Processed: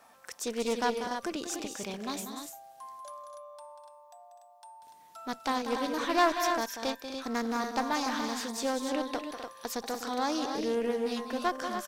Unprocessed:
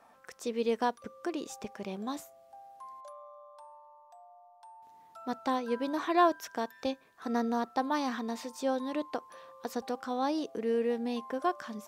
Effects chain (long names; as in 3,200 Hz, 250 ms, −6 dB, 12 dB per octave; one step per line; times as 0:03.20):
one-sided soft clipper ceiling −26.5 dBFS
high-shelf EQ 2,500 Hz +11 dB
on a send: loudspeakers that aren't time-aligned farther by 65 metres −9 dB, 86 metres −11 dB, 100 metres −7 dB
on the sum: highs frequency-modulated by the lows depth 0.14 ms